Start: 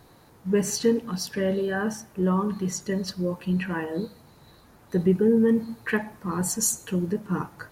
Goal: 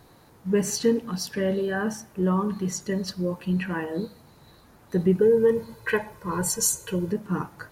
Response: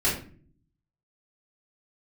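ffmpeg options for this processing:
-filter_complex "[0:a]asettb=1/sr,asplit=3[s0][s1][s2];[s0]atrim=end=5.214[s3];[s1]atrim=start=5.21:end=7.12,asetpts=PTS-STARTPTS,afade=t=in:d=0.004:c=qsin,afade=t=out:st=1.906:d=0.004:c=qsin,aecho=1:1:2:0.78,atrim=end_sample=84231[s4];[s2]atrim=start=7.116[s5];[s3][s4]acrossfade=d=0.004:c1=hsin:c2=qsin[s6];[s6][s5]acrossfade=d=0.004:c1=qsin:c2=hsin"

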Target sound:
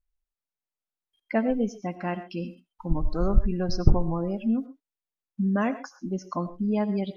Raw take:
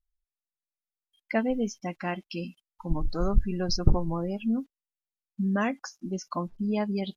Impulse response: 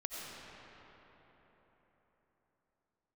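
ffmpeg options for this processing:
-filter_complex "[0:a]highshelf=f=2300:g=-10.5,asplit=2[s0][s1];[1:a]atrim=start_sample=2205,atrim=end_sample=6174[s2];[s1][s2]afir=irnorm=-1:irlink=0,volume=0.75[s3];[s0][s3]amix=inputs=2:normalize=0,volume=0.891"

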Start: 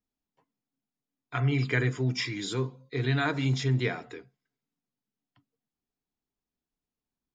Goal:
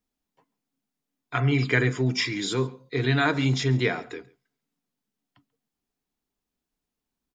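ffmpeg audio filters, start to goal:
-af "equalizer=f=110:t=o:w=0.63:g=-5,aecho=1:1:138:0.0631,volume=1.88"

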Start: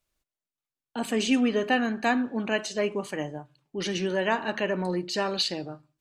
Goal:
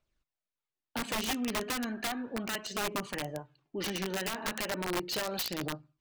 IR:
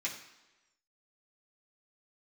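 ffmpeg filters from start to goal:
-af "acompressor=threshold=0.0398:ratio=16,aphaser=in_gain=1:out_gain=1:delay=5:decay=0.41:speed=0.35:type=triangular,adynamicsmooth=sensitivity=6.5:basefreq=5600,aeval=exprs='(mod(17.8*val(0)+1,2)-1)/17.8':c=same,volume=0.841"

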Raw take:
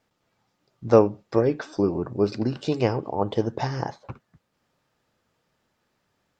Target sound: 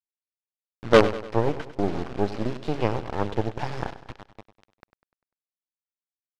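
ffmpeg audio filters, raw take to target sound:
-filter_complex "[0:a]asplit=2[s0][s1];[s1]aecho=0:1:1001:0.075[s2];[s0][s2]amix=inputs=2:normalize=0,acrusher=bits=3:dc=4:mix=0:aa=0.000001,lowpass=3800,asplit=2[s3][s4];[s4]aecho=0:1:99|198|297|396|495:0.211|0.101|0.0487|0.0234|0.0112[s5];[s3][s5]amix=inputs=2:normalize=0"

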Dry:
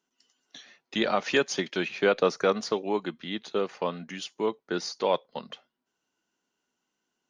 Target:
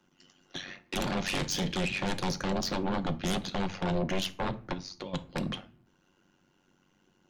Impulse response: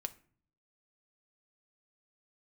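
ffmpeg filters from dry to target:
-filter_complex "[0:a]bass=f=250:g=13,treble=f=4000:g=-8,acrossover=split=190|3000[s0][s1][s2];[s1]acompressor=threshold=0.0141:ratio=4[s3];[s0][s3][s2]amix=inputs=3:normalize=0,alimiter=level_in=1.26:limit=0.0631:level=0:latency=1:release=34,volume=0.794,asplit=3[s4][s5][s6];[s4]afade=t=out:st=4.72:d=0.02[s7];[s5]acompressor=threshold=0.00355:ratio=16,afade=t=in:st=4.72:d=0.02,afade=t=out:st=5.13:d=0.02[s8];[s6]afade=t=in:st=5.13:d=0.02[s9];[s7][s8][s9]amix=inputs=3:normalize=0,tremolo=f=94:d=1,aeval=exprs='0.0501*sin(PI/2*3.55*val(0)/0.0501)':c=same,asettb=1/sr,asplit=3[s10][s11][s12];[s10]atrim=end=1.204[s13];[s11]atrim=start=1.2:end=1.76,asetpts=PTS-STARTPTS,afade=t=in:d=0.004:c=qsin,afade=t=out:st=0.556:d=0.004:c=qsin,asplit=2[s14][s15];[s15]adelay=39,volume=0.266[s16];[s14][s16]amix=inputs=2:normalize=0,atrim=end_sample=24696[s17];[s12]atrim=start=1.756[s18];[s13][s17]acrossfade=d=0.004:c1=hsin:c2=qsin[s19];[s19][s18]acrossfade=d=0.004:c1=qsin:c2=hsin[s20];[1:a]atrim=start_sample=2205[s21];[s20][s21]afir=irnorm=-1:irlink=0,volume=1.26"

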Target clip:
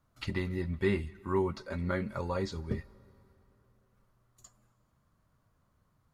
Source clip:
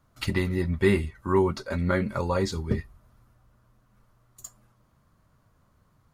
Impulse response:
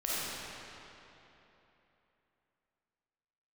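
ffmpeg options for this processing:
-filter_complex "[0:a]acrossover=split=6600[s0][s1];[s1]acompressor=threshold=0.00112:ratio=4:attack=1:release=60[s2];[s0][s2]amix=inputs=2:normalize=0,asplit=2[s3][s4];[1:a]atrim=start_sample=2205,adelay=100[s5];[s4][s5]afir=irnorm=-1:irlink=0,volume=0.0266[s6];[s3][s6]amix=inputs=2:normalize=0,volume=0.422"

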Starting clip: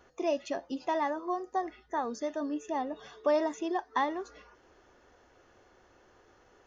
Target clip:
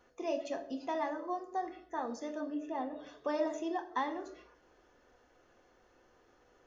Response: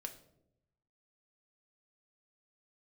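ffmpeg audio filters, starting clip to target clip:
-filter_complex "[0:a]asettb=1/sr,asplit=3[s0][s1][s2];[s0]atrim=end=2.414[s3];[s1]atrim=start=2.41:end=3.07,asetpts=PTS-STARTPTS,afade=t=in:d=0.004:c=qsin,afade=t=out:st=0.656:d=0.004:c=qsin,lowpass=3600[s4];[s2]atrim=start=3.066[s5];[s3][s4]acrossfade=d=0.004:c1=hsin:c2=qsin[s6];[s6][s5]acrossfade=d=0.004:c1=qsin:c2=hsin[s7];[1:a]atrim=start_sample=2205,afade=t=out:st=0.33:d=0.01,atrim=end_sample=14994[s8];[s7][s8]afir=irnorm=-1:irlink=0,volume=0.841"

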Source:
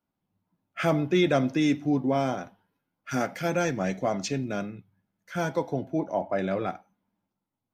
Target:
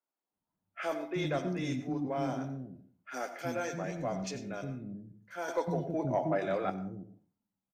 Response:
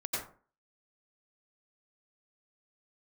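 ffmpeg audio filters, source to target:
-filter_complex "[0:a]acrossover=split=320|2900[s0][s1][s2];[s2]adelay=30[s3];[s0]adelay=320[s4];[s4][s1][s3]amix=inputs=3:normalize=0,asoftclip=type=tanh:threshold=0.178,asplit=2[s5][s6];[1:a]atrim=start_sample=2205[s7];[s6][s7]afir=irnorm=-1:irlink=0,volume=0.237[s8];[s5][s8]amix=inputs=2:normalize=0,asettb=1/sr,asplit=3[s9][s10][s11];[s9]atrim=end=5.484[s12];[s10]atrim=start=5.48:end=6.7,asetpts=PTS-STARTPTS,afade=t=in:d=0.004:c=qsin,afade=t=out:st=1.216:d=0.004:c=qsin,acontrast=37[s13];[s11]atrim=start=6.696[s14];[s12][s13]acrossfade=d=0.004:c1=hsin:c2=qsin[s15];[s15][s14]acrossfade=d=0.004:c1=qsin:c2=hsin,volume=0.376"

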